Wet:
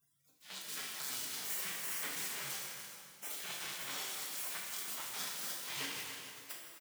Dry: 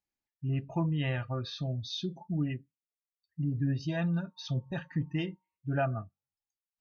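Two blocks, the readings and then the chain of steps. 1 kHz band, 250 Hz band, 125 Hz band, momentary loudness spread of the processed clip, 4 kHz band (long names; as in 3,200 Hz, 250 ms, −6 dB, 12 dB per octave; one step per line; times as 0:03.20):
−6.0 dB, −24.0 dB, −31.5 dB, 9 LU, +1.5 dB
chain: converter with a step at zero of −34 dBFS
reverb reduction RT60 0.9 s
high-pass filter 320 Hz 24 dB per octave
gate on every frequency bin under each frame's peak −30 dB weak
brickwall limiter −48 dBFS, peak gain reduction 11.5 dB
automatic gain control gain up to 15.5 dB
shaped tremolo saw down 2 Hz, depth 45%
double-tracking delay 36 ms −11 dB
single-tap delay 293 ms −10 dB
dense smooth reverb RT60 2.2 s, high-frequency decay 0.85×, DRR −2 dB
level +3.5 dB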